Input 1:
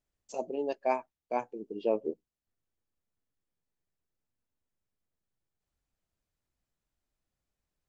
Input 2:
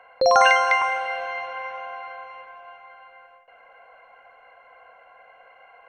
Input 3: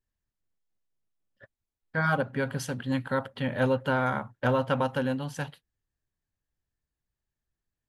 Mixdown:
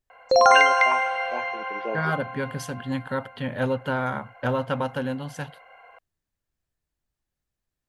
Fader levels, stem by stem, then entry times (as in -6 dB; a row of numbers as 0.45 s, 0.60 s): -3.0 dB, +0.5 dB, 0.0 dB; 0.00 s, 0.10 s, 0.00 s